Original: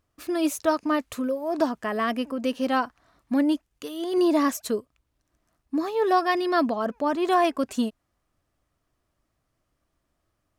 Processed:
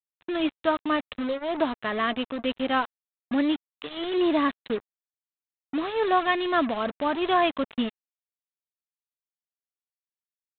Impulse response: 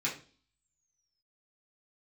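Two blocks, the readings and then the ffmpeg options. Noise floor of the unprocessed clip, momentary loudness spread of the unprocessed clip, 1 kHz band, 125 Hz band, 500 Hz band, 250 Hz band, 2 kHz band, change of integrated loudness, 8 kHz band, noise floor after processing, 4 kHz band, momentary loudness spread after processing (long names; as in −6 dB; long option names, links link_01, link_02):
−77 dBFS, 9 LU, −0.5 dB, can't be measured, −2.0 dB, −2.5 dB, +2.0 dB, −1.5 dB, below −40 dB, below −85 dBFS, +3.5 dB, 10 LU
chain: -af "highshelf=frequency=2000:gain=9.5,aresample=8000,acrusher=bits=4:mix=0:aa=0.5,aresample=44100,volume=-2.5dB"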